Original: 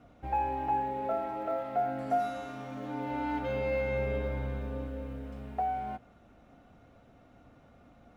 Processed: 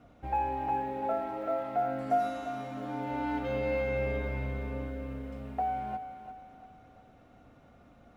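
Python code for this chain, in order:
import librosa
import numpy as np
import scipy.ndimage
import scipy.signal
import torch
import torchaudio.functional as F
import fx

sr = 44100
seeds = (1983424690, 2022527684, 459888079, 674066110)

y = fx.echo_thinned(x, sr, ms=345, feedback_pct=44, hz=230.0, wet_db=-10)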